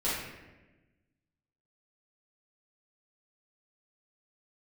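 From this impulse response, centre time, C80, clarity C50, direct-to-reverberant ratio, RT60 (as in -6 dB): 77 ms, 3.0 dB, -1.0 dB, -10.0 dB, 1.1 s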